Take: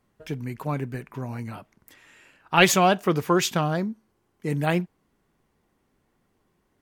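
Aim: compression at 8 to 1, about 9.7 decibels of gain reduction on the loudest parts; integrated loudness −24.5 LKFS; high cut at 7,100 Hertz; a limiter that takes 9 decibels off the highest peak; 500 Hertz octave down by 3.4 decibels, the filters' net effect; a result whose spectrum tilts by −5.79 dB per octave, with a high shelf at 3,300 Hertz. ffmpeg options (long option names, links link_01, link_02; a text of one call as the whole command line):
ffmpeg -i in.wav -af "lowpass=7100,equalizer=frequency=500:width_type=o:gain=-4.5,highshelf=frequency=3300:gain=-8.5,acompressor=threshold=-24dB:ratio=8,volume=9dB,alimiter=limit=-13.5dB:level=0:latency=1" out.wav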